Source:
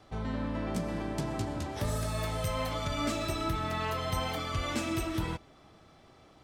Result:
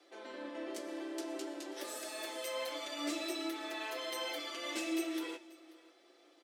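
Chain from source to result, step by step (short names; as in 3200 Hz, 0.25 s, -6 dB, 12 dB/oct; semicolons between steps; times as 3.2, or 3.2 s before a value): steep high-pass 270 Hz 72 dB/oct; bell 1000 Hz -8.5 dB 0.89 oct; on a send: echo 0.536 s -21 dB; on the sum: flange 0.57 Hz, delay 9.7 ms, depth 8.3 ms, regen +76%; comb 5.8 ms, depth 67%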